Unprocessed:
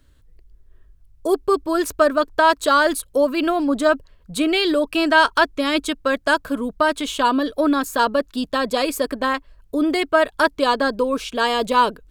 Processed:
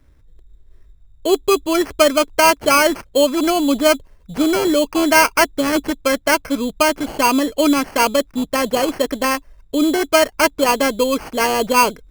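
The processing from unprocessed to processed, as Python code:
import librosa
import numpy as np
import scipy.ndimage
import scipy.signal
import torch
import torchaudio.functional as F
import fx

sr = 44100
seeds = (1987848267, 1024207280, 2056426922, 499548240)

y = fx.high_shelf(x, sr, hz=3000.0, db=-9.5)
y = fx.sample_hold(y, sr, seeds[0], rate_hz=3700.0, jitter_pct=0)
y = y * librosa.db_to_amplitude(3.5)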